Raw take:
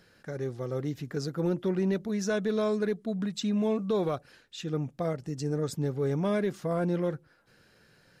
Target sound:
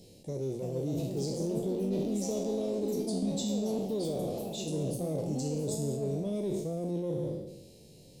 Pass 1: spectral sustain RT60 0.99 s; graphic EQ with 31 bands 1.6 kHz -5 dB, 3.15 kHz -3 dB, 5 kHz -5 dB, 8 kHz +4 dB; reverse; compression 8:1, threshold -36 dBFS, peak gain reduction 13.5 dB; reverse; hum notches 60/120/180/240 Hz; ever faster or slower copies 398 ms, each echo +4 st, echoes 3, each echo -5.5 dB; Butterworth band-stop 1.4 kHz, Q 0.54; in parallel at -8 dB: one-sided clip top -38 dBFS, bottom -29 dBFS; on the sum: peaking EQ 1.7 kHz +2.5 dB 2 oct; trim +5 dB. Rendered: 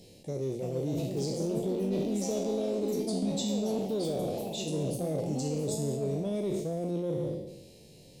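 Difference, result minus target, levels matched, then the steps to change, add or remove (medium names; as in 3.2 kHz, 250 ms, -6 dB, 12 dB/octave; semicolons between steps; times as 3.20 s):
2 kHz band +4.0 dB; one-sided clip: distortion -5 dB
change: one-sided clip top -45.5 dBFS, bottom -29 dBFS; change: peaking EQ 1.7 kHz -4 dB 2 oct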